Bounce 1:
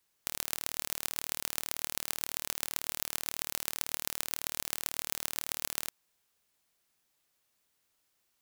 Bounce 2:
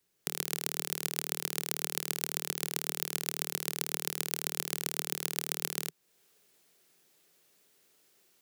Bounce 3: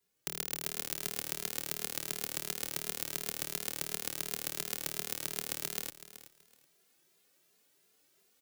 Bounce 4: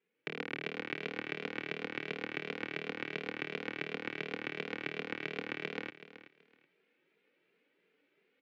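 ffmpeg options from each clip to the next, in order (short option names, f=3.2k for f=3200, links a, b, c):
-filter_complex "[0:a]equalizer=f=160:t=o:w=0.67:g=11,equalizer=f=400:t=o:w=0.67:g=9,equalizer=f=1k:t=o:w=0.67:g=-4,acrossover=split=220[a][b];[b]dynaudnorm=f=120:g=3:m=10dB[c];[a][c]amix=inputs=2:normalize=0,volume=-1dB"
-filter_complex "[0:a]aecho=1:1:377|754:0.2|0.0399,asplit=2[a][b];[b]adelay=2.5,afreqshift=2.8[c];[a][c]amix=inputs=2:normalize=1"
-af "aeval=exprs='max(val(0),0)':c=same,highpass=f=160:w=0.5412,highpass=f=160:w=1.3066,equalizer=f=280:t=q:w=4:g=5,equalizer=f=480:t=q:w=4:g=7,equalizer=f=710:t=q:w=4:g=-9,equalizer=f=1.1k:t=q:w=4:g=-8,equalizer=f=2.3k:t=q:w=4:g=5,lowpass=f=2.7k:w=0.5412,lowpass=f=2.7k:w=1.3066,volume=6.5dB"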